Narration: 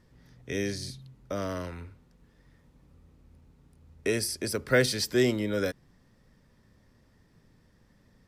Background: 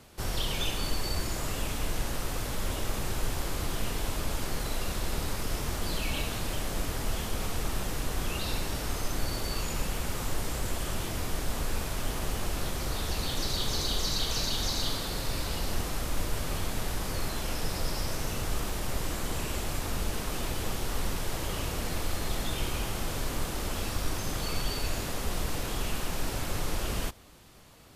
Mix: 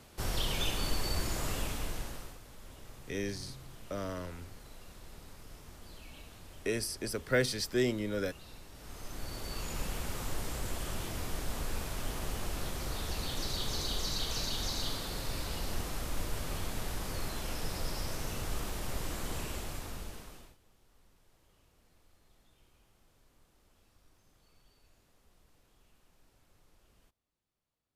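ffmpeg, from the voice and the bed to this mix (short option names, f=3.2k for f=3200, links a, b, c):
-filter_complex "[0:a]adelay=2600,volume=-5.5dB[a];[1:a]volume=12.5dB,afade=t=out:st=1.51:d=0.88:silence=0.133352,afade=t=in:st=8.73:d=1.12:silence=0.188365,afade=t=out:st=19.37:d=1.2:silence=0.0316228[b];[a][b]amix=inputs=2:normalize=0"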